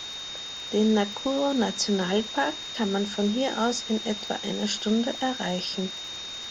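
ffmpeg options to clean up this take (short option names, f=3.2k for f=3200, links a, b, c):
-af "adeclick=t=4,bandreject=f=3.7k:w=30,afftdn=nr=30:nf=-37"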